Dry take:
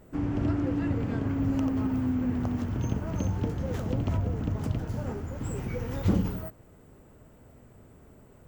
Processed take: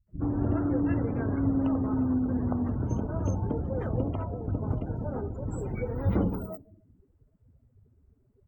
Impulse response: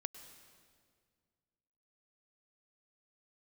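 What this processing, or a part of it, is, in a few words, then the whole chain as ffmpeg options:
filtered reverb send: -filter_complex "[0:a]asettb=1/sr,asplit=3[link_01][link_02][link_03];[link_01]atrim=end=4.054[link_04];[link_02]atrim=start=4.05:end=4.48,asetpts=PTS-STARTPTS,afade=type=in:duration=0.004:curve=qsin,afade=type=out:start_time=0.426:duration=0.004:curve=qsin,lowshelf=frequency=340:gain=-6.5[link_05];[link_03]atrim=start=4.476[link_06];[link_04][link_05]acrossfade=duration=0.004:curve1=hsin:curve2=qsin[link_07];[link_07][link_06]acrossfade=duration=0.004:curve1=qsin:curve2=hsin,asplit=2[link_08][link_09];[link_09]highpass=frequency=240:poles=1,lowpass=6100[link_10];[1:a]atrim=start_sample=2205[link_11];[link_10][link_11]afir=irnorm=-1:irlink=0,volume=-3.5dB[link_12];[link_08][link_12]amix=inputs=2:normalize=0,acrossover=split=180[link_13][link_14];[link_14]adelay=70[link_15];[link_13][link_15]amix=inputs=2:normalize=0,afftdn=noise_reduction=28:noise_floor=-39,equalizer=frequency=3800:width_type=o:width=1.4:gain=-3.5"

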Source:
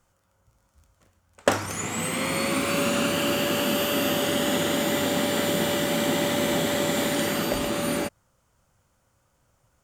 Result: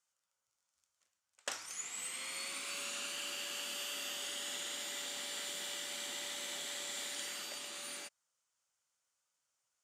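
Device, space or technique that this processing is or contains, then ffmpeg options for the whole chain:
piezo pickup straight into a mixer: -af "lowpass=6600,aderivative,volume=-4.5dB"

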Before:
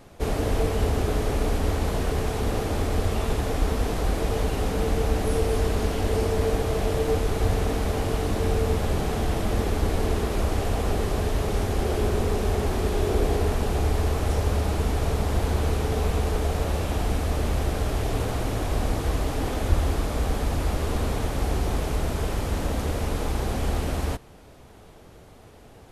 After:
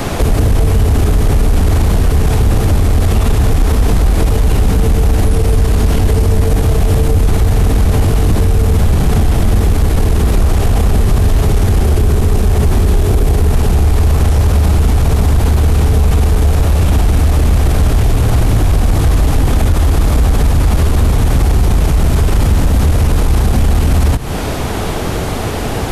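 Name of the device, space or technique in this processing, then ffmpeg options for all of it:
mastering chain: -filter_complex "[0:a]equalizer=frequency=530:width_type=o:width=0.77:gain=-3,acrossover=split=180|7600[link_01][link_02][link_03];[link_01]acompressor=threshold=-26dB:ratio=4[link_04];[link_02]acompressor=threshold=-43dB:ratio=4[link_05];[link_03]acompressor=threshold=-55dB:ratio=4[link_06];[link_04][link_05][link_06]amix=inputs=3:normalize=0,acompressor=threshold=-34dB:ratio=2,asoftclip=type=tanh:threshold=-26dB,asoftclip=type=hard:threshold=-29dB,alimiter=level_in=35.5dB:limit=-1dB:release=50:level=0:latency=1,volume=-3.5dB"

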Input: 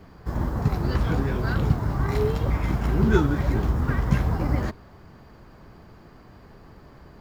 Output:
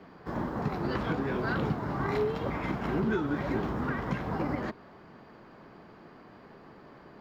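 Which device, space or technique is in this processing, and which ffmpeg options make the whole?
DJ mixer with the lows and highs turned down: -filter_complex "[0:a]acrossover=split=160 4400:gain=0.112 1 0.2[link_01][link_02][link_03];[link_01][link_02][link_03]amix=inputs=3:normalize=0,alimiter=limit=-20dB:level=0:latency=1:release=271"

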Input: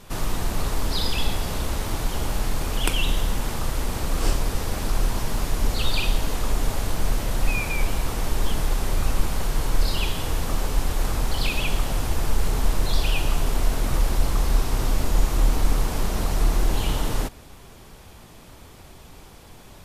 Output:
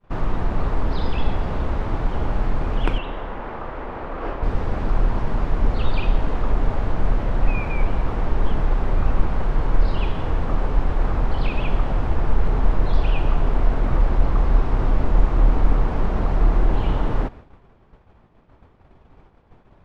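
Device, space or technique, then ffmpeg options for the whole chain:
hearing-loss simulation: -filter_complex "[0:a]lowpass=1600,agate=range=-33dB:threshold=-37dB:ratio=3:detection=peak,asettb=1/sr,asplit=3[link_01][link_02][link_03];[link_01]atrim=end=2.984[link_04];[link_02]atrim=start=2.98:end=4.43,asetpts=PTS-STARTPTS,afade=type=in:duration=0.004:curve=qsin,afade=type=out:start_time=1.446:duration=0.004:curve=qsin,bass=frequency=250:gain=-13,treble=frequency=4000:gain=-15[link_05];[link_03]atrim=start=4.426[link_06];[link_04][link_05]acrossfade=duration=0.004:curve1=hsin:curve2=qsin[link_07];[link_07][link_06]acrossfade=duration=0.004:curve1=qsin:curve2=hsin,volume=3.5dB"

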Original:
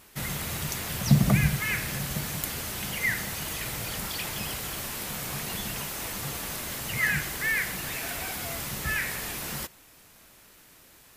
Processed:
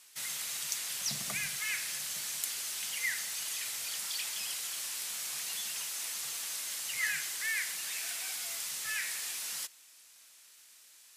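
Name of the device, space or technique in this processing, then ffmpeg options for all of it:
piezo pickup straight into a mixer: -af "lowpass=7700,aderivative,volume=4dB"

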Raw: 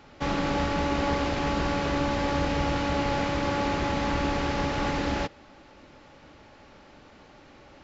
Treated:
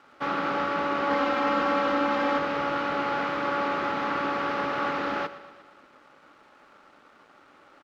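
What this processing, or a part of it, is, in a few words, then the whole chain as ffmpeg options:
pocket radio on a weak battery: -filter_complex "[0:a]highpass=250,lowpass=3600,aeval=exprs='sgn(val(0))*max(abs(val(0))-0.00106,0)':channel_layout=same,equalizer=frequency=1300:width_type=o:width=0.48:gain=11,asettb=1/sr,asplit=3[link_01][link_02][link_03];[link_01]atrim=end=1.104[link_04];[link_02]atrim=start=1.1:end=2.38,asetpts=PTS-STARTPTS,afade=type=in:duration=0.004:curve=qsin,afade=type=out:start_time=1.276:duration=0.004:curve=qsin,aecho=1:1:3.8:0.86,atrim=end_sample=56448[link_05];[link_03]atrim=start=2.376[link_06];[link_04][link_05]acrossfade=duration=0.004:curve1=hsin:curve2=qsin[link_07];[link_07][link_06]acrossfade=duration=0.004:curve1=qsin:curve2=hsin,aecho=1:1:118|236|354|472|590|708:0.158|0.0951|0.0571|0.0342|0.0205|0.0123,volume=-1.5dB"

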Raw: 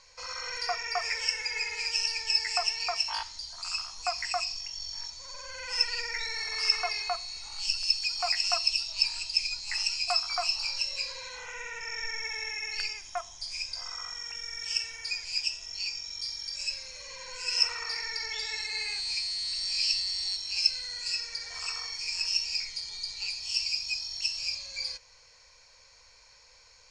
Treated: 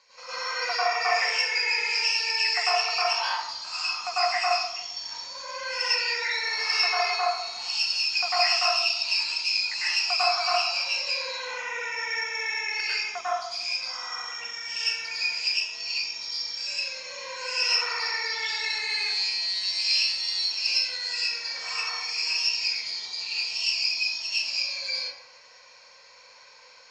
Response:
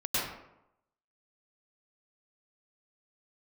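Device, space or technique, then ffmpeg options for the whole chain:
supermarket ceiling speaker: -filter_complex "[0:a]highpass=270,lowpass=5200[link_01];[1:a]atrim=start_sample=2205[link_02];[link_01][link_02]afir=irnorm=-1:irlink=0"

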